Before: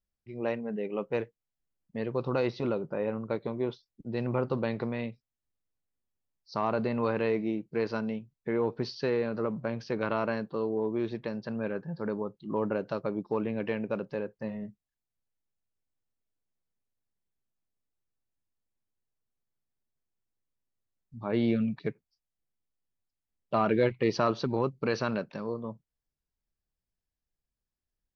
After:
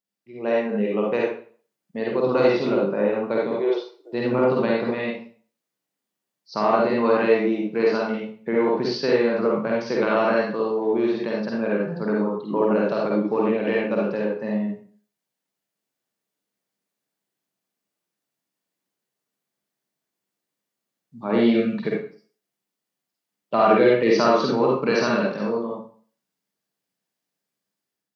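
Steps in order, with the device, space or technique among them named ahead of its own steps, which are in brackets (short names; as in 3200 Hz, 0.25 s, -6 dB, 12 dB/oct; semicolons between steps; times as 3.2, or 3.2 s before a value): 3.51–4.13 steep high-pass 330 Hz 96 dB/oct; far laptop microphone (reverb RT60 0.45 s, pre-delay 44 ms, DRR -3.5 dB; HPF 160 Hz 24 dB/oct; AGC gain up to 5.5 dB)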